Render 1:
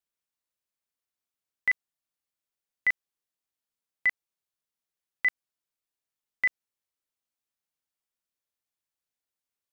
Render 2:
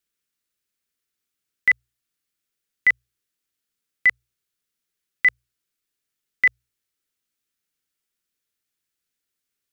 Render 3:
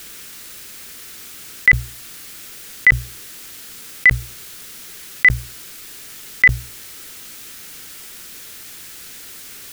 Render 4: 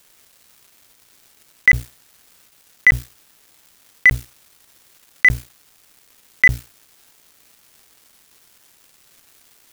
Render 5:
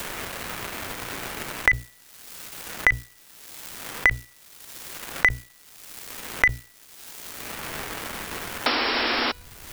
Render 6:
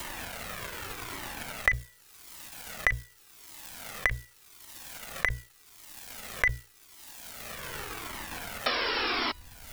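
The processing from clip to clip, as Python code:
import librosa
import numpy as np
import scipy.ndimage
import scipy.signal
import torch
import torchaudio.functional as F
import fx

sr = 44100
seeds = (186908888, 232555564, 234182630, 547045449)

y1 = fx.band_shelf(x, sr, hz=780.0, db=-9.0, octaves=1.2)
y1 = fx.hum_notches(y1, sr, base_hz=60, count=2)
y1 = F.gain(torch.from_numpy(y1), 8.0).numpy()
y2 = fx.env_flatten(y1, sr, amount_pct=100)
y2 = F.gain(torch.from_numpy(y2), 5.0).numpy()
y3 = np.sign(y2) * np.maximum(np.abs(y2) - 10.0 ** (-32.5 / 20.0), 0.0)
y4 = fx.spec_paint(y3, sr, seeds[0], shape='noise', start_s=8.66, length_s=0.66, low_hz=230.0, high_hz=5600.0, level_db=-26.0)
y4 = fx.comb_fb(y4, sr, f0_hz=490.0, decay_s=0.54, harmonics='all', damping=0.0, mix_pct=30)
y4 = fx.band_squash(y4, sr, depth_pct=100)
y4 = F.gain(torch.from_numpy(y4), 1.5).numpy()
y5 = fx.comb_cascade(y4, sr, direction='falling', hz=0.86)
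y5 = F.gain(torch.from_numpy(y5), -1.0).numpy()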